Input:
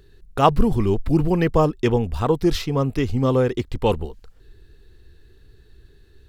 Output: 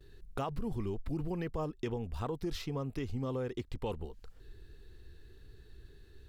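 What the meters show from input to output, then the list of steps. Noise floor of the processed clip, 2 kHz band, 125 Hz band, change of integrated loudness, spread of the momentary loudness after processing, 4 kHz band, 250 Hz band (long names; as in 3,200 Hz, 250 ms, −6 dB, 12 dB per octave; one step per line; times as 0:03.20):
−57 dBFS, −17.0 dB, −16.5 dB, −17.5 dB, 21 LU, −16.0 dB, −17.0 dB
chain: noise gate with hold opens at −45 dBFS
brickwall limiter −11 dBFS, peak gain reduction 9.5 dB
downward compressor 2.5 to 1, threshold −35 dBFS, peak gain reduction 13 dB
level −4 dB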